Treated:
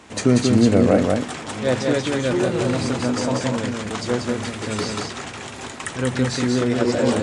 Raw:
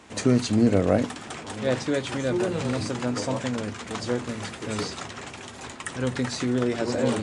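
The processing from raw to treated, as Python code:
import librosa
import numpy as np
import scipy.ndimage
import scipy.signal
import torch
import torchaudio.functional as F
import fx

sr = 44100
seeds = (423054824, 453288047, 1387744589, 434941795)

y = x + 10.0 ** (-3.5 / 20.0) * np.pad(x, (int(187 * sr / 1000.0), 0))[:len(x)]
y = F.gain(torch.from_numpy(y), 4.0).numpy()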